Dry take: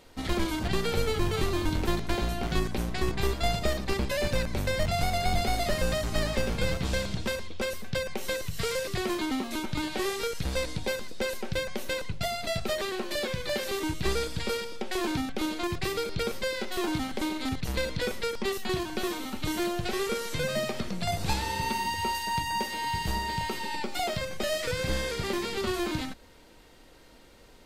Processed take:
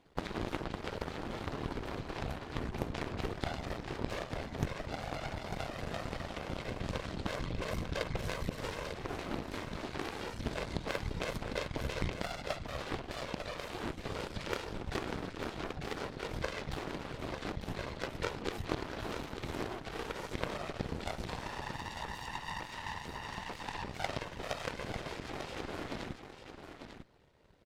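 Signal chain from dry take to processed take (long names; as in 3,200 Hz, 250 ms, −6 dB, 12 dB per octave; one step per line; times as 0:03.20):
low-pass filter 2,100 Hz 6 dB per octave
in parallel at 0 dB: downward compressor, threshold −35 dBFS, peak gain reduction 13.5 dB
on the sum: brickwall limiter −23 dBFS, peak gain reduction 9.5 dB
speech leveller
random phases in short frames
harmonic generator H 3 −8 dB, 4 −24 dB, 5 −25 dB, 6 −21 dB, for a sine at −16.5 dBFS
on a send: single-tap delay 896 ms −8.5 dB
on the sum: level +3 dB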